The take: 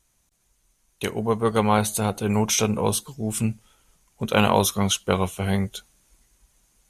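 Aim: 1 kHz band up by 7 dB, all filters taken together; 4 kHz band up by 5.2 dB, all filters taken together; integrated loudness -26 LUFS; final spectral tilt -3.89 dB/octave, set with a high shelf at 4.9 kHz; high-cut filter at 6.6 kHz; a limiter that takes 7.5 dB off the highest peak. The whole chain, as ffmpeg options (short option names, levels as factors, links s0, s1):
-af "lowpass=6600,equalizer=f=1000:t=o:g=8,equalizer=f=4000:t=o:g=5.5,highshelf=f=4900:g=3,volume=0.668,alimiter=limit=0.282:level=0:latency=1"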